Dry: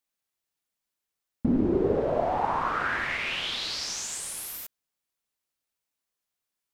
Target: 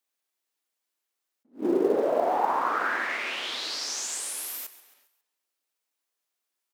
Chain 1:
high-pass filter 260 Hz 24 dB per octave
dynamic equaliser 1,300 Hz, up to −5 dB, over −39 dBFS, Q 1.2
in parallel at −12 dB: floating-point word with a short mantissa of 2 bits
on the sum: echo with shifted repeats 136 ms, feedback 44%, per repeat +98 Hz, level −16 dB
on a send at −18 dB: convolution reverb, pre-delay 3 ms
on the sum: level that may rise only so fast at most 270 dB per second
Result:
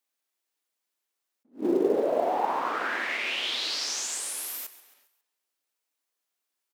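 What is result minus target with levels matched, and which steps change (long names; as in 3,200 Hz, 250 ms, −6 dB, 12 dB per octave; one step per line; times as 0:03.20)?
4,000 Hz band +3.5 dB
change: dynamic equaliser 2,900 Hz, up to −5 dB, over −39 dBFS, Q 1.2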